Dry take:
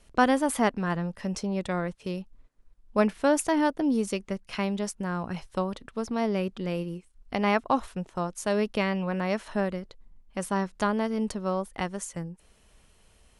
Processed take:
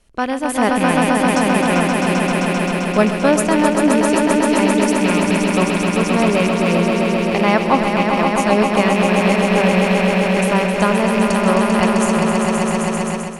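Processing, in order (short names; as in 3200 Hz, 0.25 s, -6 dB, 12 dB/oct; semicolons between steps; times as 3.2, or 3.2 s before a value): rattling part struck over -32 dBFS, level -23 dBFS; swelling echo 0.131 s, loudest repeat 5, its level -6 dB; AGC gain up to 11 dB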